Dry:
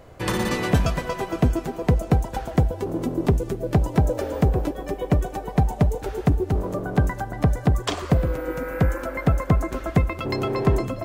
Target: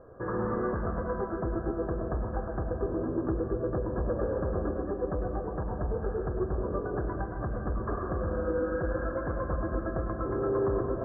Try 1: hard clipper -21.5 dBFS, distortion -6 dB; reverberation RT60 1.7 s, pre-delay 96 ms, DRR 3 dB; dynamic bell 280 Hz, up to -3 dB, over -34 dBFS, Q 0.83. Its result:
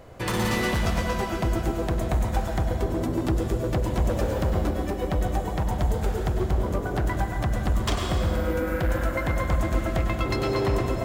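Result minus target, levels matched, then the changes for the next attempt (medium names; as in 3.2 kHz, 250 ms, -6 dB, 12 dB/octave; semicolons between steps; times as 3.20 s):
2 kHz band +4.5 dB
add after dynamic bell: rippled Chebyshev low-pass 1.7 kHz, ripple 9 dB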